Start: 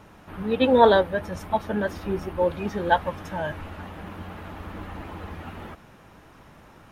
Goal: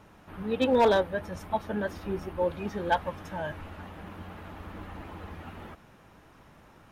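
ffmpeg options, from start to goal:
ffmpeg -i in.wav -af "volume=11dB,asoftclip=hard,volume=-11dB,volume=-5dB" out.wav

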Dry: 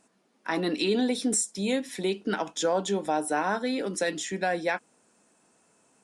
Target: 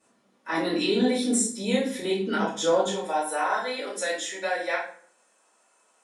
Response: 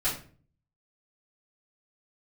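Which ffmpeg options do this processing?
-filter_complex "[0:a]asetnsamples=nb_out_samples=441:pad=0,asendcmd='2.85 highpass f 570',highpass=76[link_01];[1:a]atrim=start_sample=2205,asetrate=34398,aresample=44100[link_02];[link_01][link_02]afir=irnorm=-1:irlink=0,volume=-7.5dB"

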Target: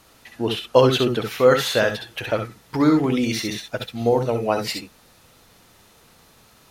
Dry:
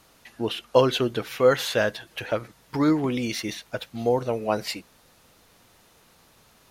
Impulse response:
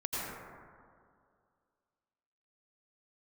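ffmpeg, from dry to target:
-filter_complex "[1:a]atrim=start_sample=2205,atrim=end_sample=3969,asetrate=57330,aresample=44100[link_01];[0:a][link_01]afir=irnorm=-1:irlink=0,volume=8dB"

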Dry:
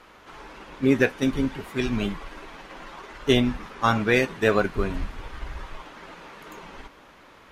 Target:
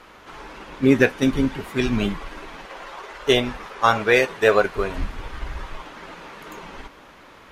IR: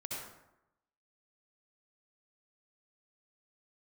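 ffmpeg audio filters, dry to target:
-filter_complex "[0:a]asettb=1/sr,asplit=3[link_01][link_02][link_03];[link_01]atrim=end=2.654[link_04];[link_02]atrim=start=2.65:end=4.98,asetpts=PTS-STARTPTS,afade=type=in:duration=0.004:curve=qsin,afade=type=out:start_time=2.326:duration=0.004:curve=qsin,lowshelf=frequency=350:width_type=q:width=1.5:gain=-7.5[link_05];[link_03]atrim=start=4.976[link_06];[link_04][link_05]acrossfade=duration=0.004:curve1=hsin:curve2=qsin[link_07];[link_07][link_06]acrossfade=duration=0.004:curve1=qsin:curve2=hsin,volume=4dB"

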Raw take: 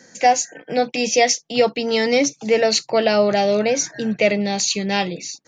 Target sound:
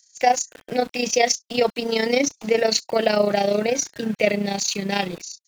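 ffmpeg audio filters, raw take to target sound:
ffmpeg -i in.wav -filter_complex "[0:a]tremolo=f=29:d=0.667,acrossover=split=3500[link_01][link_02];[link_01]aeval=exprs='val(0)*gte(abs(val(0)),0.0141)':channel_layout=same[link_03];[link_03][link_02]amix=inputs=2:normalize=0" out.wav

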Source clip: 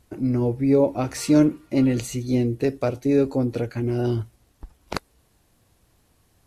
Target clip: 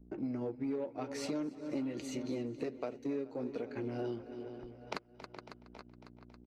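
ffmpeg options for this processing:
ffmpeg -i in.wav -filter_complex "[0:a]aeval=exprs='val(0)+0.00501*(sin(2*PI*60*n/s)+sin(2*PI*2*60*n/s)/2+sin(2*PI*3*60*n/s)/3+sin(2*PI*4*60*n/s)/4+sin(2*PI*5*60*n/s)/5)':channel_layout=same,flanger=delay=4.4:depth=2.5:regen=-50:speed=1.4:shape=sinusoidal,anlmdn=0.01,asplit=2[link_01][link_02];[link_02]aecho=0:1:275|550|825|1100|1375:0.158|0.0903|0.0515|0.0294|0.0167[link_03];[link_01][link_03]amix=inputs=2:normalize=0,aeval=exprs='0.316*(cos(1*acos(clip(val(0)/0.316,-1,1)))-cos(1*PI/2))+0.0141*(cos(7*acos(clip(val(0)/0.316,-1,1)))-cos(7*PI/2))':channel_layout=same,asplit=2[link_04][link_05];[link_05]adelay=420,lowpass=frequency=4700:poles=1,volume=-19.5dB,asplit=2[link_06][link_07];[link_07]adelay=420,lowpass=frequency=4700:poles=1,volume=0.39,asplit=2[link_08][link_09];[link_09]adelay=420,lowpass=frequency=4700:poles=1,volume=0.39[link_10];[link_06][link_08][link_10]amix=inputs=3:normalize=0[link_11];[link_04][link_11]amix=inputs=2:normalize=0,asoftclip=type=tanh:threshold=-14dB,acompressor=mode=upward:threshold=-40dB:ratio=2.5,acrossover=split=200 6100:gain=0.126 1 0.224[link_12][link_13][link_14];[link_12][link_13][link_14]amix=inputs=3:normalize=0,acompressor=threshold=-37dB:ratio=6,lowshelf=frequency=200:gain=3,volume=1dB" out.wav

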